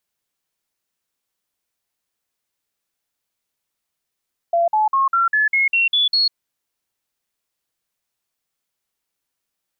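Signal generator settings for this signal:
stepped sweep 682 Hz up, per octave 3, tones 9, 0.15 s, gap 0.05 s −13.5 dBFS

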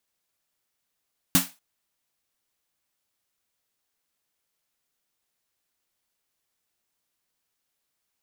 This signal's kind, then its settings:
synth snare length 0.24 s, tones 180 Hz, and 270 Hz, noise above 620 Hz, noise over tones 2 dB, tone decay 0.19 s, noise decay 0.27 s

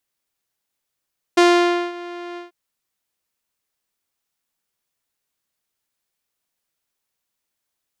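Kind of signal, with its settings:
subtractive voice saw F4 12 dB per octave, low-pass 3,400 Hz, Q 0.75, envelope 1 octave, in 0.40 s, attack 9.6 ms, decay 0.54 s, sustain −20.5 dB, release 0.14 s, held 1.00 s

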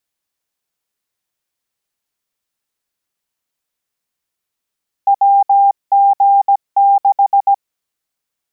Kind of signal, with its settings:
Morse code "WG6" 17 words per minute 797 Hz −6.5 dBFS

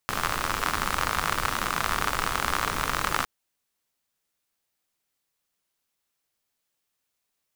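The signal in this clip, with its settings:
rain-like ticks over hiss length 3.16 s, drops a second 68, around 1,200 Hz, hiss −4 dB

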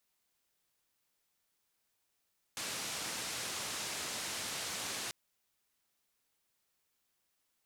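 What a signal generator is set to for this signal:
band-limited noise 93–8,200 Hz, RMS −40 dBFS 2.54 s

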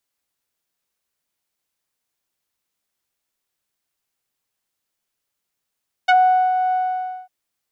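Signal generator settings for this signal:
subtractive voice saw F#5 12 dB per octave, low-pass 770 Hz, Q 1.5, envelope 2.5 octaves, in 0.06 s, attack 12 ms, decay 0.43 s, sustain −7 dB, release 0.55 s, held 0.65 s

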